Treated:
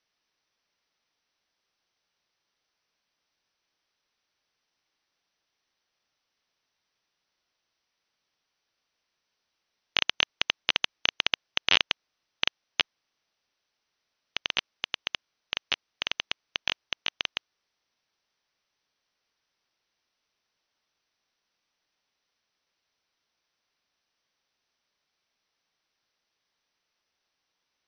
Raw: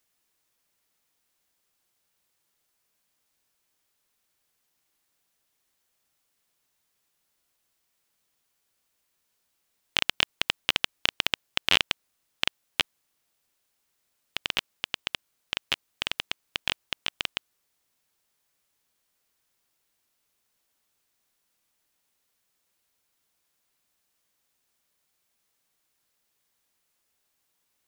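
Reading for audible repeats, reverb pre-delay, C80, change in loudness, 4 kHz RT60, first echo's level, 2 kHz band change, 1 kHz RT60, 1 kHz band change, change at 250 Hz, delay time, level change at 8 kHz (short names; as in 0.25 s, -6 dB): none, none, none, 0.0 dB, none, none, 0.0 dB, none, -0.5 dB, -3.5 dB, none, -4.5 dB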